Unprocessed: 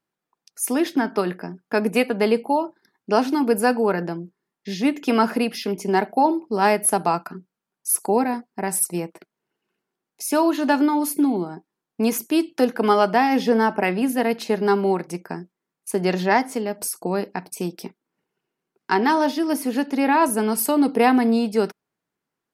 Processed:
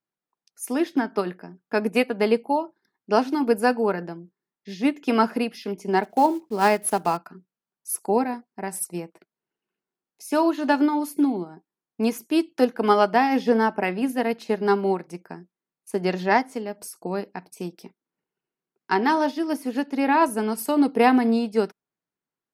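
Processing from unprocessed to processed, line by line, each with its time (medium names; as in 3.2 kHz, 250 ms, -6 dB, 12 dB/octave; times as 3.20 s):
6.03–7.19 s: block-companded coder 5-bit
whole clip: treble shelf 9 kHz -5.5 dB; upward expansion 1.5:1, over -31 dBFS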